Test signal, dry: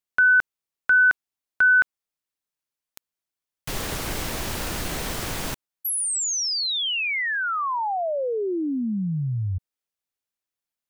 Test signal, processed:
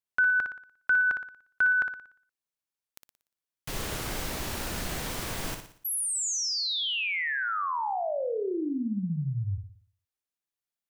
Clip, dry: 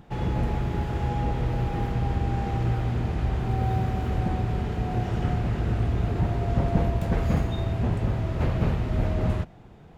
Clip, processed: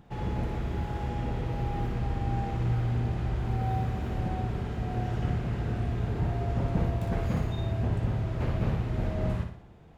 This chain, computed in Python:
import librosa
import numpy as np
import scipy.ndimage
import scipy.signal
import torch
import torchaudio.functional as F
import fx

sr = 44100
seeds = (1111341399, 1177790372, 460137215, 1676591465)

y = fx.room_flutter(x, sr, wall_m=10.1, rt60_s=0.52)
y = F.gain(torch.from_numpy(y), -5.5).numpy()